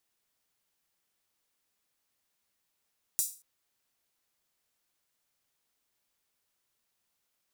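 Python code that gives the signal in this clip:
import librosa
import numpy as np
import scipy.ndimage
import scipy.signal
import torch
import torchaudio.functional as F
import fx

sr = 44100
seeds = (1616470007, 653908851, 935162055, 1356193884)

y = fx.drum_hat_open(sr, length_s=0.23, from_hz=7400.0, decay_s=0.35)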